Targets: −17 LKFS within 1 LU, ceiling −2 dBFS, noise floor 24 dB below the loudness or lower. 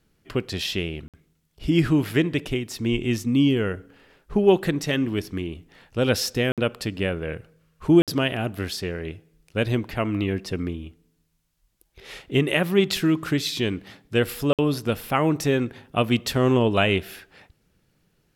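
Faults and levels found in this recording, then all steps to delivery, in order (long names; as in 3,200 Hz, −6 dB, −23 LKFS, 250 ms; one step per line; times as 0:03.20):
number of dropouts 4; longest dropout 57 ms; integrated loudness −24.0 LKFS; sample peak −6.0 dBFS; target loudness −17.0 LKFS
→ repair the gap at 0:01.08/0:06.52/0:08.02/0:14.53, 57 ms
level +7 dB
brickwall limiter −2 dBFS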